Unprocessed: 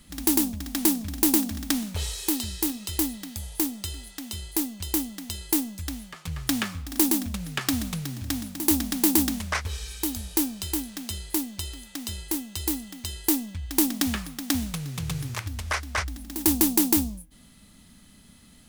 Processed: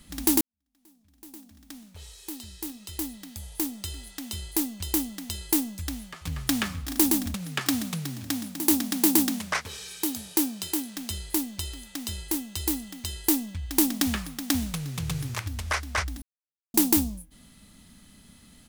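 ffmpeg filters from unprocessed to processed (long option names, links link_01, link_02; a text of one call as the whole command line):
ffmpeg -i in.wav -filter_complex "[0:a]asplit=2[link_01][link_02];[link_02]afade=type=in:start_time=5.82:duration=0.01,afade=type=out:start_time=6.53:duration=0.01,aecho=0:1:390|780|1170|1560|1950|2340|2730:0.266073|0.159644|0.0957861|0.0574717|0.034483|0.0206898|0.0124139[link_03];[link_01][link_03]amix=inputs=2:normalize=0,asettb=1/sr,asplit=3[link_04][link_05][link_06];[link_04]atrim=end=7.344[link_07];[link_05]atrim=start=7.34:end=10.97,asetpts=PTS-STARTPTS,afade=type=in:duration=0.004:curve=qsin,afade=type=out:start_time=3.626:duration=0.004:curve=qsin,highpass=frequency=120:width=0.5412,highpass=frequency=120:width=1.3066[link_08];[link_06]atrim=start=10.966[link_09];[link_07][link_08]acrossfade=duration=0.004:curve1=hsin:curve2=qsin[link_10];[link_10][link_09]acrossfade=duration=0.004:curve1=qsin:curve2=hsin,asplit=4[link_11][link_12][link_13][link_14];[link_11]atrim=end=0.41,asetpts=PTS-STARTPTS,afade=type=out:start_time=0.406:duration=0.004:curve=hsin[link_15];[link_12]atrim=start=0.41:end=16.22,asetpts=PTS-STARTPTS,afade=type=in:duration=3.84:curve=qua,afade=type=out:start_time=15.806:duration=0.004:curve=hsin[link_16];[link_13]atrim=start=16.22:end=16.74,asetpts=PTS-STARTPTS,volume=0[link_17];[link_14]atrim=start=16.74,asetpts=PTS-STARTPTS,afade=type=in:duration=0.004:curve=hsin[link_18];[link_15][link_16][link_17][link_18]concat=n=4:v=0:a=1" out.wav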